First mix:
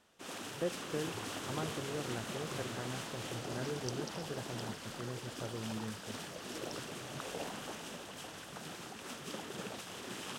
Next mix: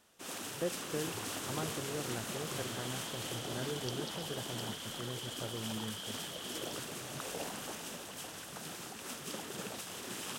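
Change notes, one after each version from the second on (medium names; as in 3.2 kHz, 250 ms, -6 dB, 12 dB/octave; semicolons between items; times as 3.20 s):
second sound: add resonant low-pass 3.2 kHz, resonance Q 15; master: add treble shelf 7.9 kHz +11.5 dB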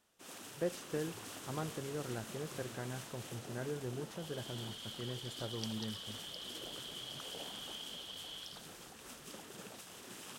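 first sound -8.0 dB; second sound: entry +1.75 s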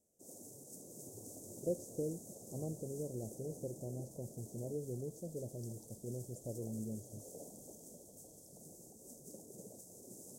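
speech: entry +1.05 s; second sound -8.0 dB; master: add elliptic band-stop 590–6600 Hz, stop band 60 dB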